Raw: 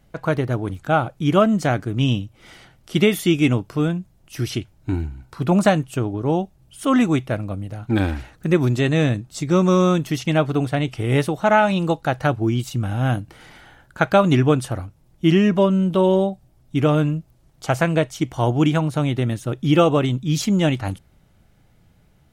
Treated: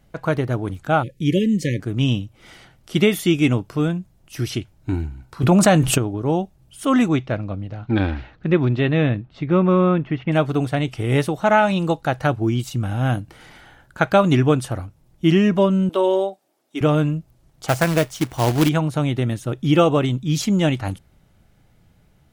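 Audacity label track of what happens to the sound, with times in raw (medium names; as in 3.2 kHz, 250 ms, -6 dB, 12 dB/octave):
1.030000	1.800000	spectral selection erased 570–1700 Hz
5.430000	5.980000	level flattener amount 70%
7.080000	10.310000	low-pass 6.1 kHz -> 2.3 kHz 24 dB/octave
15.890000	16.810000	high-pass 320 Hz 24 dB/octave
17.680000	18.690000	companded quantiser 4-bit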